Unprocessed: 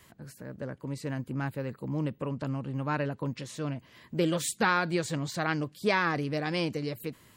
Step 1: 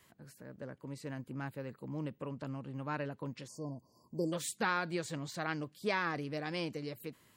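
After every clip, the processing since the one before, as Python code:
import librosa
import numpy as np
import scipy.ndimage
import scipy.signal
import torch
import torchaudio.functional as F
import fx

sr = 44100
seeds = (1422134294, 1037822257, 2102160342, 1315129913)

y = fx.spec_erase(x, sr, start_s=3.48, length_s=0.85, low_hz=1100.0, high_hz=4400.0)
y = fx.low_shelf(y, sr, hz=89.0, db=-8.0)
y = y * librosa.db_to_amplitude(-7.0)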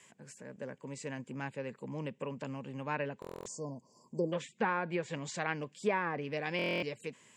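y = fx.cabinet(x, sr, low_hz=200.0, low_slope=12, high_hz=8600.0, hz=(310.0, 680.0, 1300.0, 2500.0, 4200.0, 7400.0), db=(-9, -5, -9, 4, -8, 9))
y = fx.env_lowpass_down(y, sr, base_hz=1400.0, full_db=-33.5)
y = fx.buffer_glitch(y, sr, at_s=(3.2, 6.57), block=1024, repeats=10)
y = y * librosa.db_to_amplitude(6.0)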